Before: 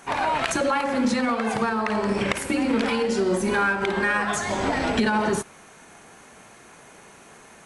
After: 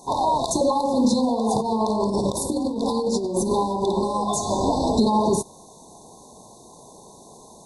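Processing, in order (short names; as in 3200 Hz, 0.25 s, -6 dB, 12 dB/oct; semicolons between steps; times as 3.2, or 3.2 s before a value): 1.47–3.52 negative-ratio compressor -25 dBFS, ratio -0.5; brick-wall FIR band-stop 1100–3500 Hz; gain +3.5 dB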